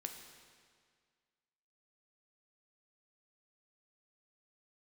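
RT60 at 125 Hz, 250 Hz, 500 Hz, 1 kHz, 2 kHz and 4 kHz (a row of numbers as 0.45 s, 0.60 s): 1.9 s, 1.9 s, 1.9 s, 1.9 s, 1.8 s, 1.7 s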